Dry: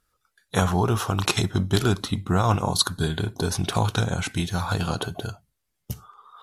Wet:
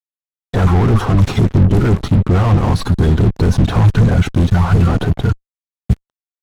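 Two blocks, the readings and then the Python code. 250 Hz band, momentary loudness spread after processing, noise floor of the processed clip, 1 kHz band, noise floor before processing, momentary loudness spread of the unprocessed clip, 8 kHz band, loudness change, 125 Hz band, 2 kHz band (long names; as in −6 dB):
+11.5 dB, 8 LU, below −85 dBFS, +4.5 dB, −77 dBFS, 12 LU, can't be measured, +10.5 dB, +13.5 dB, +4.0 dB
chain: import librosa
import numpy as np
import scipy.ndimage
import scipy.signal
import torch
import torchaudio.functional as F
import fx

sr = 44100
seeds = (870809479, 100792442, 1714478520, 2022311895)

y = fx.spec_quant(x, sr, step_db=30)
y = fx.fuzz(y, sr, gain_db=37.0, gate_db=-37.0)
y = fx.riaa(y, sr, side='playback')
y = y * 10.0 ** (-4.5 / 20.0)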